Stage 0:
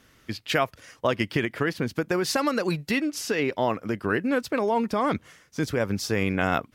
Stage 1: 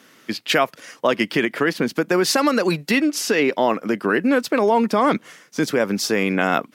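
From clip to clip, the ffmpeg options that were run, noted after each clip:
-filter_complex "[0:a]asplit=2[s0][s1];[s1]alimiter=limit=0.133:level=0:latency=1,volume=1[s2];[s0][s2]amix=inputs=2:normalize=0,highpass=f=180:w=0.5412,highpass=f=180:w=1.3066,volume=1.26"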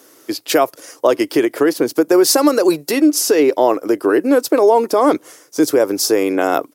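-af "firequalizer=gain_entry='entry(130,0);entry(200,-12);entry(300,10);entry(1800,-3);entry(2900,-3);entry(5200,7);entry(11000,14)':delay=0.05:min_phase=1,volume=0.841"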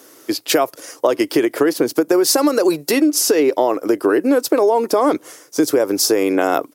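-af "acompressor=threshold=0.224:ratio=6,volume=1.26"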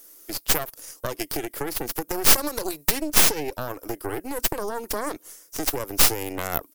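-af "aemphasis=mode=production:type=75fm,aeval=exprs='3.55*(cos(1*acos(clip(val(0)/3.55,-1,1)))-cos(1*PI/2))+1.78*(cos(6*acos(clip(val(0)/3.55,-1,1)))-cos(6*PI/2))':c=same,volume=0.158"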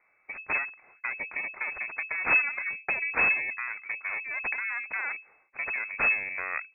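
-af "lowpass=f=2200:t=q:w=0.5098,lowpass=f=2200:t=q:w=0.6013,lowpass=f=2200:t=q:w=0.9,lowpass=f=2200:t=q:w=2.563,afreqshift=-2600,volume=0.668"

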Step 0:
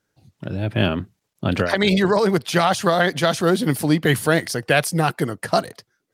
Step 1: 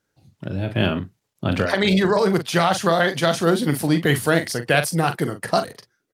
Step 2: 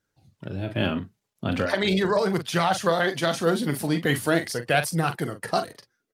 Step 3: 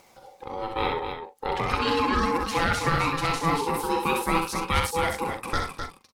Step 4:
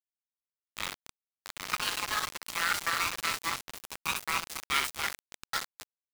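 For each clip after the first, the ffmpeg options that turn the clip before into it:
-filter_complex "[0:a]asplit=2[s0][s1];[s1]adelay=42,volume=0.335[s2];[s0][s2]amix=inputs=2:normalize=0,volume=0.891"
-af "flanger=delay=0.5:depth=4.6:regen=62:speed=0.4:shape=triangular"
-filter_complex "[0:a]acompressor=mode=upward:threshold=0.0178:ratio=2.5,aeval=exprs='val(0)*sin(2*PI*660*n/s)':c=same,asplit=2[s0][s1];[s1]aecho=0:1:64.14|259.5:0.562|0.447[s2];[s0][s2]amix=inputs=2:normalize=0"
-af "highpass=f=1200:w=0.5412,highpass=f=1200:w=1.3066,aeval=exprs='val(0)*gte(abs(val(0)),0.0501)':c=same"

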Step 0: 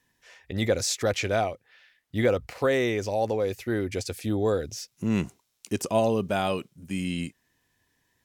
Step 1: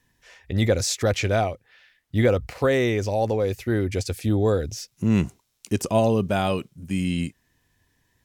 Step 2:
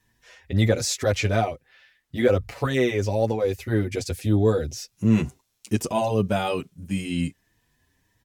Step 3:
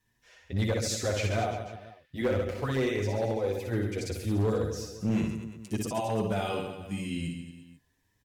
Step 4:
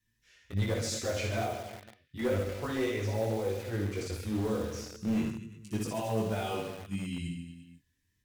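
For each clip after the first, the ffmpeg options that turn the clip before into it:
-af "lowshelf=f=130:g=10.5,volume=1.26"
-filter_complex "[0:a]asplit=2[s0][s1];[s1]adelay=6.9,afreqshift=1.6[s2];[s0][s2]amix=inputs=2:normalize=1,volume=1.33"
-af "aecho=1:1:60|135|228.8|345.9|492.4:0.631|0.398|0.251|0.158|0.1,volume=5.01,asoftclip=hard,volume=0.2,volume=0.398"
-filter_complex "[0:a]flanger=delay=18:depth=5.8:speed=0.32,acrossover=split=410|1300|3200[s0][s1][s2][s3];[s1]acrusher=bits=7:mix=0:aa=0.000001[s4];[s0][s4][s2][s3]amix=inputs=4:normalize=0"

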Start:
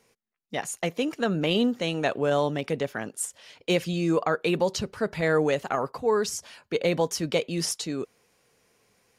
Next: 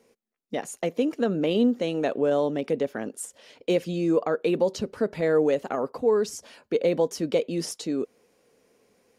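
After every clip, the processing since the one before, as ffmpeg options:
-filter_complex "[0:a]asplit=2[s0][s1];[s1]acompressor=threshold=0.0251:ratio=6,volume=1[s2];[s0][s2]amix=inputs=2:normalize=0,equalizer=f=125:t=o:w=1:g=-3,equalizer=f=250:t=o:w=1:g=9,equalizer=f=500:t=o:w=1:g=8,volume=0.355"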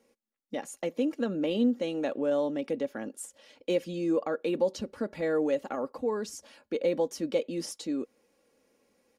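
-af "aecho=1:1:3.6:0.46,volume=0.501"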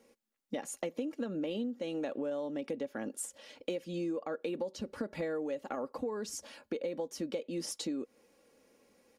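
-af "acompressor=threshold=0.0158:ratio=10,volume=1.41"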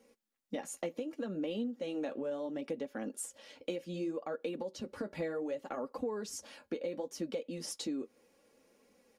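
-af "flanger=delay=3.9:depth=8.1:regen=-43:speed=0.67:shape=sinusoidal,volume=1.33"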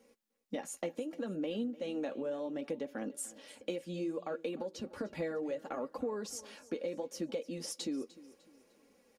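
-af "aecho=1:1:301|602|903:0.112|0.0438|0.0171"

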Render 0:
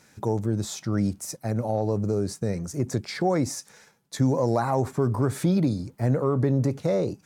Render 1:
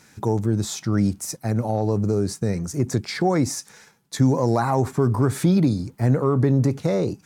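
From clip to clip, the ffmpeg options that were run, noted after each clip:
-af "equalizer=f=570:t=o:w=0.53:g=-5,volume=1.68"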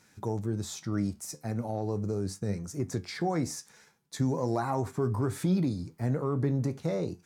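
-af "flanger=delay=9.6:depth=4.3:regen=71:speed=0.39:shape=triangular,volume=0.562"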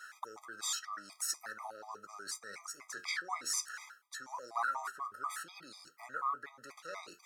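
-af "areverse,acompressor=threshold=0.0158:ratio=10,areverse,highpass=f=1300:t=q:w=5,afftfilt=real='re*gt(sin(2*PI*4.1*pts/sr)*(1-2*mod(floor(b*sr/1024/640),2)),0)':imag='im*gt(sin(2*PI*4.1*pts/sr)*(1-2*mod(floor(b*sr/1024/640),2)),0)':win_size=1024:overlap=0.75,volume=2.82"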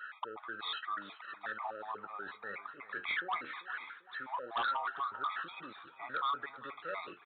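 -af "aresample=8000,aeval=exprs='0.075*sin(PI/2*2.51*val(0)/0.075)':c=same,aresample=44100,aecho=1:1:393|786|1179|1572|1965:0.141|0.0749|0.0397|0.021|0.0111,volume=0.473"

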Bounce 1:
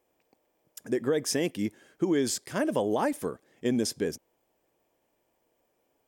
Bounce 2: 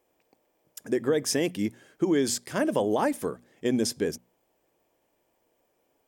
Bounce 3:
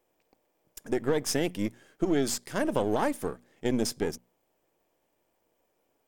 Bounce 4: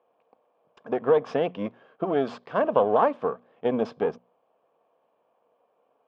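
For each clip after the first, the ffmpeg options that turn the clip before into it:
-af "bandreject=f=60:t=h:w=6,bandreject=f=120:t=h:w=6,bandreject=f=180:t=h:w=6,bandreject=f=240:t=h:w=6,volume=1.26"
-af "aeval=exprs='if(lt(val(0),0),0.447*val(0),val(0))':c=same"
-af "highpass=180,equalizer=f=330:t=q:w=4:g=-9,equalizer=f=480:t=q:w=4:g=7,equalizer=f=690:t=q:w=4:g=7,equalizer=f=1100:t=q:w=4:g=10,equalizer=f=2000:t=q:w=4:g=-10,lowpass=f=2900:w=0.5412,lowpass=f=2900:w=1.3066,volume=1.33"

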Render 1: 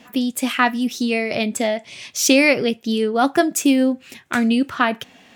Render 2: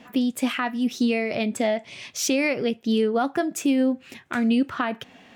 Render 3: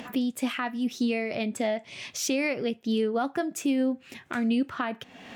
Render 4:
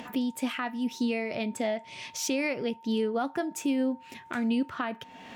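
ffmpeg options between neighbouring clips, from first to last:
-af "highshelf=f=4000:g=-9,alimiter=limit=0.211:level=0:latency=1:release=310"
-af "acompressor=mode=upward:threshold=0.0447:ratio=2.5,volume=0.596"
-af "aeval=exprs='val(0)+0.00447*sin(2*PI*910*n/s)':c=same,volume=0.794"

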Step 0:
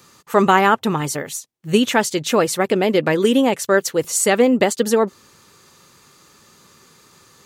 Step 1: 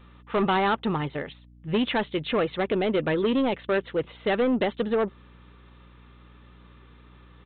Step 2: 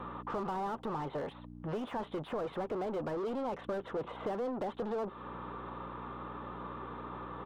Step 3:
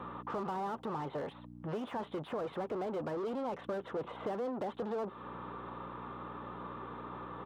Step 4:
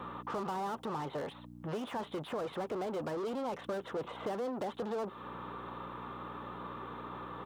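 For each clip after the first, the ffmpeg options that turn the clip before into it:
-af "aresample=8000,asoftclip=type=tanh:threshold=0.211,aresample=44100,aeval=exprs='val(0)+0.00501*(sin(2*PI*60*n/s)+sin(2*PI*2*60*n/s)/2+sin(2*PI*3*60*n/s)/3+sin(2*PI*4*60*n/s)/4+sin(2*PI*5*60*n/s)/5)':c=same,volume=0.596"
-filter_complex "[0:a]asplit=2[s0][s1];[s1]highpass=f=720:p=1,volume=31.6,asoftclip=type=tanh:threshold=0.168[s2];[s0][s2]amix=inputs=2:normalize=0,lowpass=f=2000:p=1,volume=0.501,acrossover=split=460|2300[s3][s4][s5];[s3]acompressor=threshold=0.0141:ratio=4[s6];[s4]acompressor=threshold=0.0158:ratio=4[s7];[s5]acompressor=threshold=0.01:ratio=4[s8];[s6][s7][s8]amix=inputs=3:normalize=0,highshelf=f=1500:t=q:w=1.5:g=-12,volume=0.596"
-af "highpass=71,volume=0.891"
-af "highshelf=f=3600:g=10.5"

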